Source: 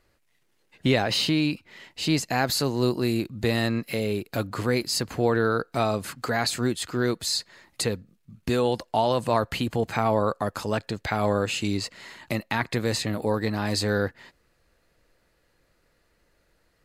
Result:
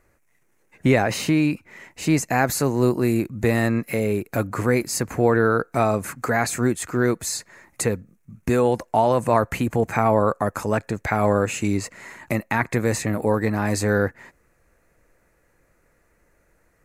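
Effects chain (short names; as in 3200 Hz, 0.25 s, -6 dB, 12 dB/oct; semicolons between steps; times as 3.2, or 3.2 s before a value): band shelf 3800 Hz -12.5 dB 1 oct; gain +4.5 dB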